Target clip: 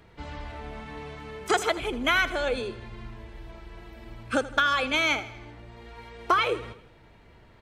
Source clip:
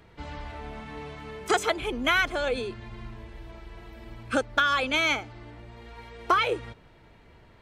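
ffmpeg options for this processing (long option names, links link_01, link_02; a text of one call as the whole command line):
ffmpeg -i in.wav -af "aecho=1:1:80|160|240|320|400:0.158|0.0824|0.0429|0.0223|0.0116" out.wav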